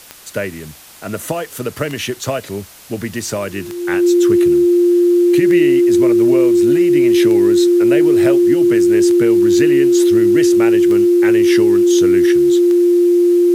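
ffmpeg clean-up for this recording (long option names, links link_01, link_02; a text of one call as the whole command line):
ffmpeg -i in.wav -af "adeclick=threshold=4,bandreject=frequency=350:width=30,agate=range=-21dB:threshold=-23dB" out.wav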